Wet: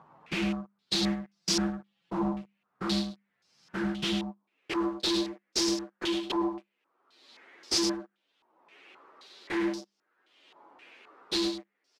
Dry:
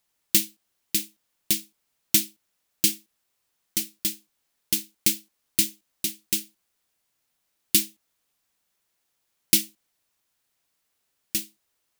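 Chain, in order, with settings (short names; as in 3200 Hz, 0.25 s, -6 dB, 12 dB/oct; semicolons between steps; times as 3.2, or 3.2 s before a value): inharmonic rescaling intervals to 120%; notches 50/100/150/200/250/300/350 Hz; 1–2.22 comb 5.9 ms, depth 65%; compressor 2:1, threshold -40 dBFS, peak gain reduction 10 dB; sample leveller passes 5; upward compressor, threshold -40 dBFS; high-pass sweep 150 Hz -> 340 Hz, 3.98–4.62; soft clip -34.5 dBFS, distortion -5 dB; echo 0.104 s -8 dB; stepped low-pass 3.8 Hz 960–5200 Hz; gain +8.5 dB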